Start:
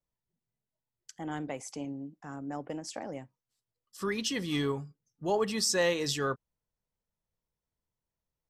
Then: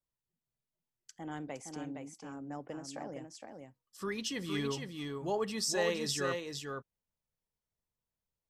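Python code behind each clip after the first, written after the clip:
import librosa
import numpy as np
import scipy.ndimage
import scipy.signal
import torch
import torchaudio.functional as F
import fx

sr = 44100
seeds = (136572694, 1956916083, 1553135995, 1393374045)

y = x + 10.0 ** (-5.0 / 20.0) * np.pad(x, (int(464 * sr / 1000.0), 0))[:len(x)]
y = y * librosa.db_to_amplitude(-5.0)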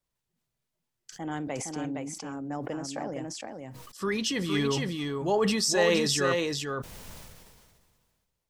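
y = fx.high_shelf(x, sr, hz=11000.0, db=-5.0)
y = fx.sustainer(y, sr, db_per_s=31.0)
y = y * librosa.db_to_amplitude(7.5)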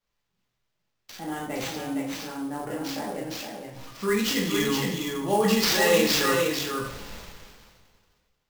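y = fx.rev_double_slope(x, sr, seeds[0], early_s=0.57, late_s=2.0, knee_db=-18, drr_db=-6.0)
y = fx.sample_hold(y, sr, seeds[1], rate_hz=10000.0, jitter_pct=20)
y = y * librosa.db_to_amplitude(-3.0)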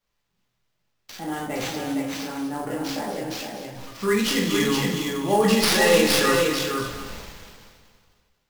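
y = fx.tracing_dist(x, sr, depth_ms=0.047)
y = y + 10.0 ** (-11.5 / 20.0) * np.pad(y, (int(241 * sr / 1000.0), 0))[:len(y)]
y = y * librosa.db_to_amplitude(3.0)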